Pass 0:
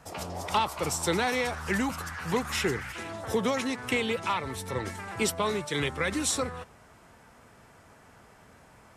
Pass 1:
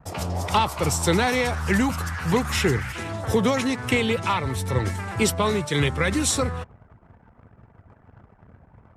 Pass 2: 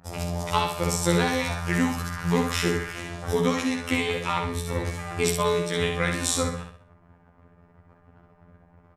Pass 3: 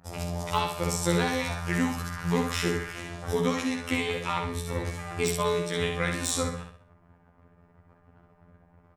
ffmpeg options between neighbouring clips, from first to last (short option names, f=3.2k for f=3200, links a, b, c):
-af "anlmdn=0.00251,equalizer=f=99:t=o:w=1.6:g=9.5,volume=5dB"
-filter_complex "[0:a]afftfilt=real='hypot(re,im)*cos(PI*b)':imag='0':win_size=2048:overlap=0.75,asplit=2[a][b];[b]aecho=0:1:63|126|189|252|315:0.562|0.225|0.09|0.036|0.0144[c];[a][c]amix=inputs=2:normalize=0"
-af "aeval=exprs='0.531*(abs(mod(val(0)/0.531+3,4)-2)-1)':c=same,volume=-3dB"